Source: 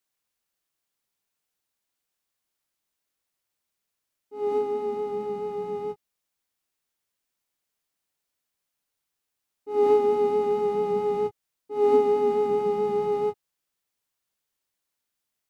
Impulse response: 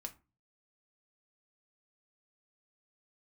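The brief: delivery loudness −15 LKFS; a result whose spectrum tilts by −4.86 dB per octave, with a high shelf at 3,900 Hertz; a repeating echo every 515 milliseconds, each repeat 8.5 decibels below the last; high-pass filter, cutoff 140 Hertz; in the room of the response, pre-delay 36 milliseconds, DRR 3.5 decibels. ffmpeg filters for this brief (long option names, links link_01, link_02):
-filter_complex "[0:a]highpass=140,highshelf=frequency=3900:gain=8.5,aecho=1:1:515|1030|1545|2060:0.376|0.143|0.0543|0.0206,asplit=2[link_01][link_02];[1:a]atrim=start_sample=2205,adelay=36[link_03];[link_02][link_03]afir=irnorm=-1:irlink=0,volume=0dB[link_04];[link_01][link_04]amix=inputs=2:normalize=0,volume=5.5dB"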